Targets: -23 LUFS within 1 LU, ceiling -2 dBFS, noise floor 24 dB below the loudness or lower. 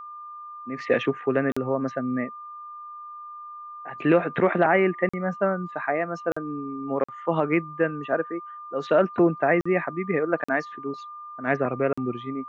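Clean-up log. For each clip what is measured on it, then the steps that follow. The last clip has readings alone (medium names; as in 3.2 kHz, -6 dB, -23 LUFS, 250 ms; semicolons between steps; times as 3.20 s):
dropouts 7; longest dropout 45 ms; steady tone 1.2 kHz; tone level -37 dBFS; loudness -25.5 LUFS; peak level -7.5 dBFS; loudness target -23.0 LUFS
-> interpolate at 1.52/5.09/6.32/7.04/9.61/10.44/11.93 s, 45 ms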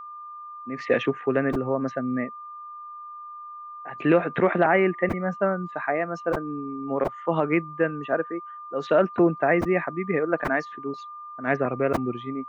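dropouts 0; steady tone 1.2 kHz; tone level -37 dBFS
-> band-stop 1.2 kHz, Q 30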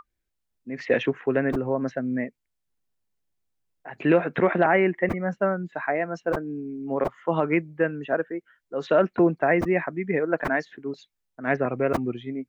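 steady tone not found; loudness -25.0 LUFS; peak level -7.5 dBFS; loudness target -23.0 LUFS
-> trim +2 dB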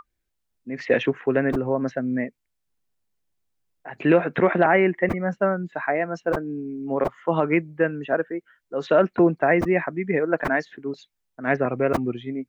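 loudness -23.0 LUFS; peak level -5.5 dBFS; noise floor -77 dBFS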